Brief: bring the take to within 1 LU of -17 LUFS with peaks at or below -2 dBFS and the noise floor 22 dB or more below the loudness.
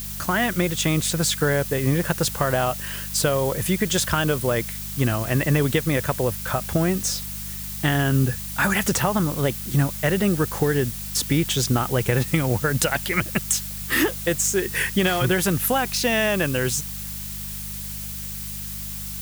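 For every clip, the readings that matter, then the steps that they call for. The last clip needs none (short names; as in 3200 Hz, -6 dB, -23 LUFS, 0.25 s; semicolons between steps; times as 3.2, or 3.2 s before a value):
hum 50 Hz; harmonics up to 200 Hz; hum level -35 dBFS; noise floor -32 dBFS; noise floor target -45 dBFS; loudness -22.5 LUFS; peak -6.0 dBFS; loudness target -17.0 LUFS
-> de-hum 50 Hz, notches 4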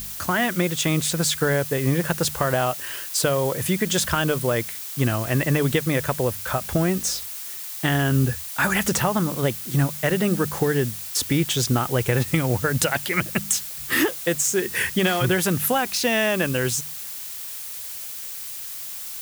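hum none; noise floor -34 dBFS; noise floor target -45 dBFS
-> denoiser 11 dB, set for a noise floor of -34 dBFS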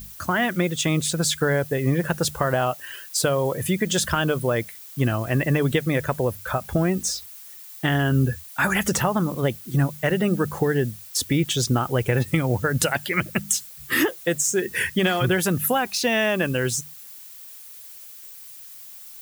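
noise floor -42 dBFS; noise floor target -45 dBFS
-> denoiser 6 dB, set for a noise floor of -42 dBFS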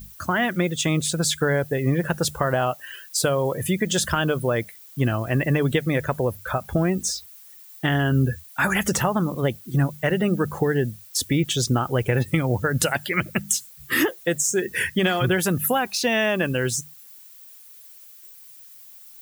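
noise floor -46 dBFS; loudness -23.0 LUFS; peak -6.5 dBFS; loudness target -17.0 LUFS
-> gain +6 dB; limiter -2 dBFS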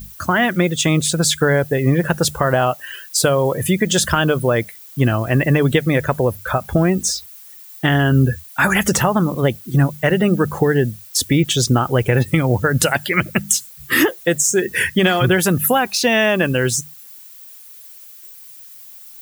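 loudness -17.0 LUFS; peak -2.0 dBFS; noise floor -40 dBFS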